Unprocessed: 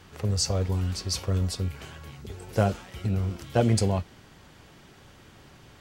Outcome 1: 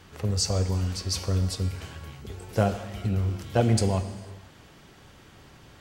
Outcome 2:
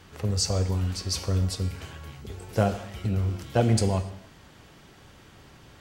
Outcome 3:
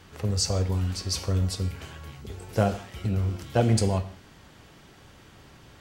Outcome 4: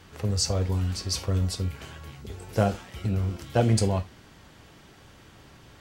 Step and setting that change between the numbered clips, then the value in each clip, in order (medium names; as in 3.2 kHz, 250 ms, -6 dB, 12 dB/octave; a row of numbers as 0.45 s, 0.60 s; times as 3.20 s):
gated-style reverb, gate: 530 ms, 320 ms, 210 ms, 100 ms